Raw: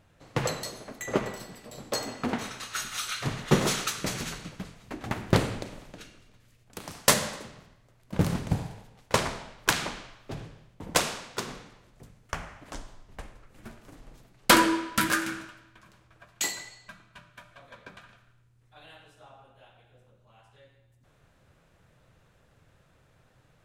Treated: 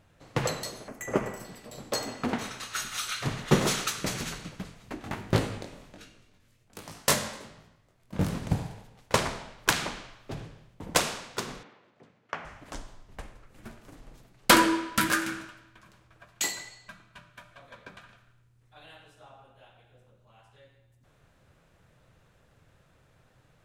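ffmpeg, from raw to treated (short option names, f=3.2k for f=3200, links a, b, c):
-filter_complex "[0:a]asettb=1/sr,asplit=3[a][b][c];[a]atrim=end=0.884[d];[b]atrim=start=0.88:end=1.45,asetpts=PTS-STARTPTS,afade=t=in:d=0.004:c=qsin,afade=t=out:st=0.566:d=0.004:c=qsin,equalizer=f=3.9k:w=2.3:g=-14[e];[c]atrim=start=1.446[f];[d][e]acrossfade=d=0.004:c1=hsin:c2=qsin[g];[g][f]acrossfade=d=0.004:c1=qsin:c2=hsin,asplit=3[h][i][j];[h]afade=t=out:st=5:d=0.02[k];[i]flanger=delay=18.5:depth=4:speed=1.3,afade=t=in:st=5:d=0.02,afade=t=out:st=8.41:d=0.02[l];[j]afade=t=in:st=8.41:d=0.02[m];[k][l][m]amix=inputs=3:normalize=0,asettb=1/sr,asplit=3[n][o][p];[n]atrim=end=11.634[q];[o]atrim=start=11.63:end=12.45,asetpts=PTS-STARTPTS,afade=t=in:d=0.004:c=qsin,afade=t=out:st=0.816:d=0.004:c=qsin,highpass=250,lowpass=3.2k[r];[p]atrim=start=12.446[s];[q][r]acrossfade=d=0.004:c1=hsin:c2=qsin[t];[t][s]acrossfade=d=0.004:c1=qsin:c2=hsin"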